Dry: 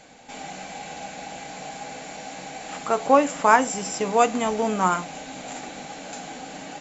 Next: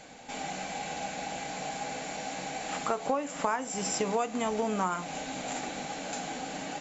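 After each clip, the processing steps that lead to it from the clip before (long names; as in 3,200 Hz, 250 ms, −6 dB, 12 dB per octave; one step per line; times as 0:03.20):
downward compressor 8 to 1, threshold −26 dBFS, peak gain reduction 16 dB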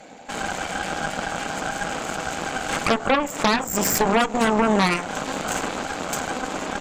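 spectral envelope exaggerated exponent 1.5
harmonic generator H 8 −7 dB, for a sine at −14.5 dBFS
low shelf with overshoot 150 Hz −6 dB, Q 1.5
level +5 dB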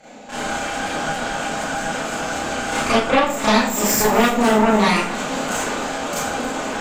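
delay that swaps between a low-pass and a high-pass 137 ms, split 830 Hz, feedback 67%, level −12.5 dB
four-comb reverb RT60 0.41 s, combs from 26 ms, DRR −8.5 dB
level −5.5 dB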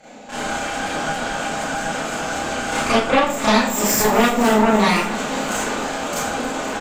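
repeating echo 515 ms, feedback 52%, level −18 dB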